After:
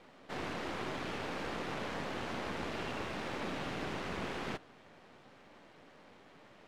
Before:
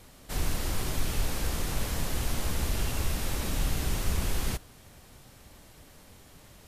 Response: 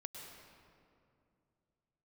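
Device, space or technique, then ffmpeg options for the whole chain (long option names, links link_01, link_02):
crystal radio: -af "highpass=240,lowpass=2500,aeval=exprs='if(lt(val(0),0),0.447*val(0),val(0))':channel_layout=same,volume=2.5dB"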